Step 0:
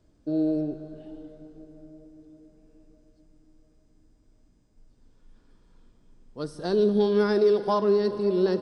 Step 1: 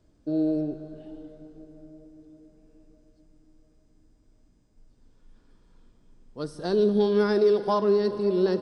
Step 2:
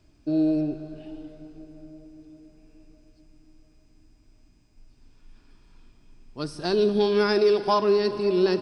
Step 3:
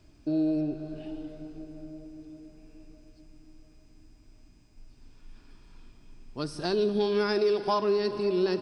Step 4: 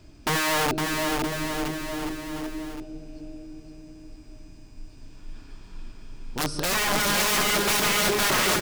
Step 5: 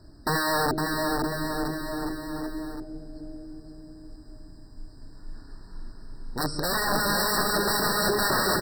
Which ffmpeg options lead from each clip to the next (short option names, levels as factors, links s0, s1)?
-af anull
-af "equalizer=f=200:t=o:w=0.33:g=-6,equalizer=f=500:t=o:w=0.33:g=-11,equalizer=f=2500:t=o:w=0.33:g=11,equalizer=f=5000:t=o:w=0.33:g=6,volume=1.58"
-af "acompressor=threshold=0.0141:ratio=1.5,volume=1.26"
-filter_complex "[0:a]aeval=exprs='(mod(22.4*val(0)+1,2)-1)/22.4':c=same,asplit=2[s0][s1];[s1]aecho=0:1:510|969|1382|1754|2089:0.631|0.398|0.251|0.158|0.1[s2];[s0][s2]amix=inputs=2:normalize=0,volume=2.37"
-af "afftfilt=real='re*eq(mod(floor(b*sr/1024/1900),2),0)':imag='im*eq(mod(floor(b*sr/1024/1900),2),0)':win_size=1024:overlap=0.75"